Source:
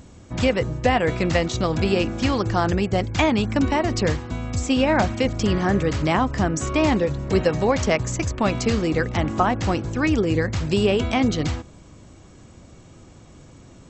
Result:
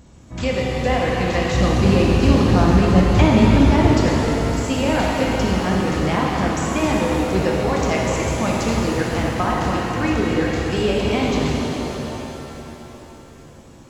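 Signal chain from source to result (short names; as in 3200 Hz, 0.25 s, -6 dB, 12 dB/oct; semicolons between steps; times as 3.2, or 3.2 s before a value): 1.49–3.91 low shelf 340 Hz +10 dB; shimmer reverb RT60 3.6 s, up +7 st, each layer -8 dB, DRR -3.5 dB; gain -4 dB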